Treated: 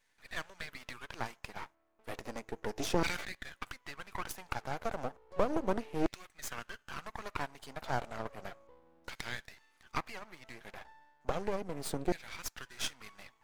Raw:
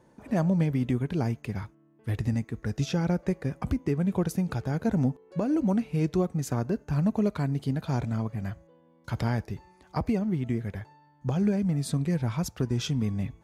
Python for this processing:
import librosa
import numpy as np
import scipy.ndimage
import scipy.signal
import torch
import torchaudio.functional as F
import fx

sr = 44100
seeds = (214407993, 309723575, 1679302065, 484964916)

y = fx.filter_lfo_highpass(x, sr, shape='saw_down', hz=0.33, low_hz=350.0, high_hz=2200.0, q=2.4)
y = fx.hpss(y, sr, part='harmonic', gain_db=-5)
y = np.maximum(y, 0.0)
y = fx.sustainer(y, sr, db_per_s=59.0, at=(2.79, 3.35))
y = y * librosa.db_to_amplitude(1.5)